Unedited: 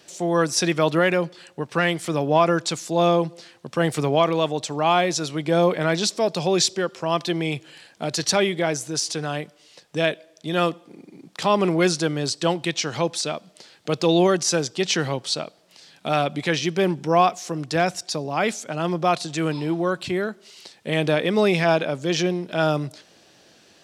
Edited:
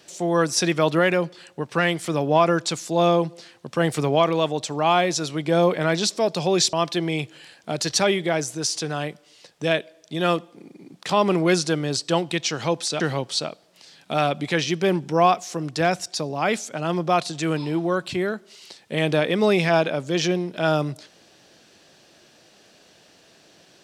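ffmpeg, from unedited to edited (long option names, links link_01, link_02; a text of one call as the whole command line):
ffmpeg -i in.wav -filter_complex "[0:a]asplit=3[link_01][link_02][link_03];[link_01]atrim=end=6.732[link_04];[link_02]atrim=start=7.058:end=13.332[link_05];[link_03]atrim=start=14.948[link_06];[link_04][link_05]acrossfade=duration=0.004:curve1=hsin:curve2=hsin[link_07];[link_07][link_06]acrossfade=duration=0.004:curve1=hsin:curve2=hsin" out.wav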